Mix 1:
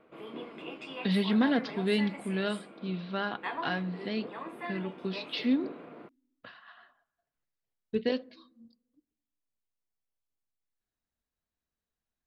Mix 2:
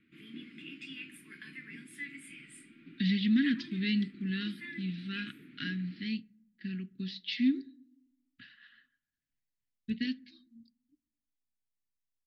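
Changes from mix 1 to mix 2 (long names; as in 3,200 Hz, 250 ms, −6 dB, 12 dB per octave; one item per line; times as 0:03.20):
speech: entry +1.95 s
master: add Chebyshev band-stop filter 280–1,800 Hz, order 3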